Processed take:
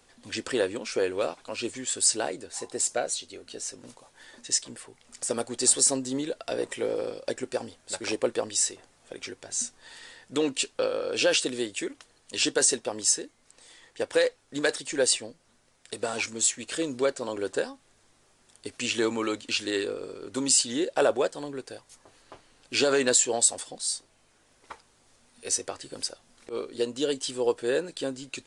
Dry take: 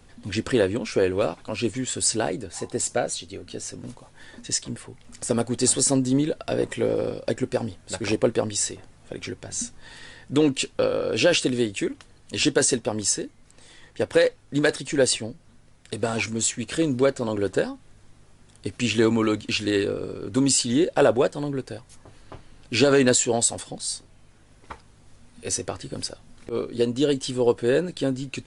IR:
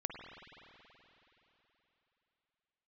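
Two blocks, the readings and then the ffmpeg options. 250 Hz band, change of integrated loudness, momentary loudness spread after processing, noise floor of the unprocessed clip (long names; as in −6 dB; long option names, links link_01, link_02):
−9.0 dB, −3.5 dB, 15 LU, −53 dBFS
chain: -af "bass=frequency=250:gain=-14,treble=frequency=4000:gain=4,aresample=22050,aresample=44100,volume=-3.5dB"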